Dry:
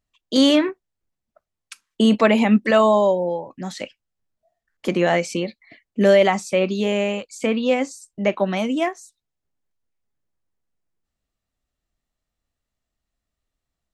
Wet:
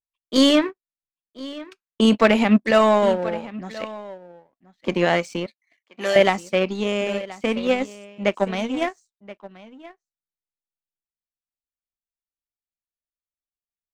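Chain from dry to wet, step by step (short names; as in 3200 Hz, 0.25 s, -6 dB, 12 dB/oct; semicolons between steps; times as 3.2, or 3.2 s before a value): on a send: echo 1.027 s -13 dB; on the sum: low-pass opened by the level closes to 2800 Hz, open at -15 dBFS; power-law curve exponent 1.4; 5.46–6.16 HPF 1500 Hz 6 dB/oct; gain +2.5 dB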